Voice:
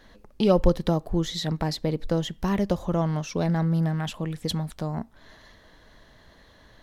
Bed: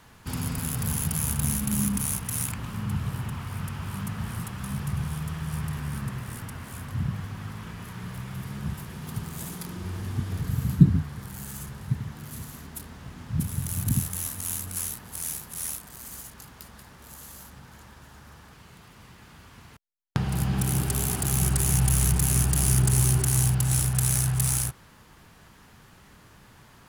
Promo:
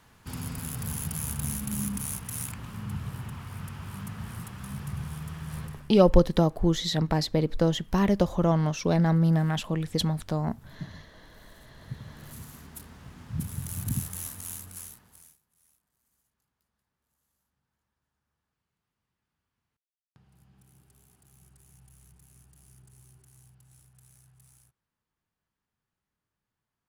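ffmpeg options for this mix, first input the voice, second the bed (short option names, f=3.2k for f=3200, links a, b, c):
-filter_complex "[0:a]adelay=5500,volume=1.5dB[a];[1:a]volume=13dB,afade=t=out:st=5.58:d=0.34:silence=0.125893,afade=t=in:st=11.6:d=0.78:silence=0.11885,afade=t=out:st=14.23:d=1.14:silence=0.0316228[b];[a][b]amix=inputs=2:normalize=0"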